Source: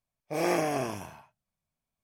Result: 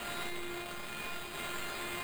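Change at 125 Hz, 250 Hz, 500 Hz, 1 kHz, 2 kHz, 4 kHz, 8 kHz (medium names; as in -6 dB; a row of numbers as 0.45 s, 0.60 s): -11.0 dB, -10.5 dB, -13.0 dB, -6.5 dB, 0.0 dB, +4.0 dB, -1.5 dB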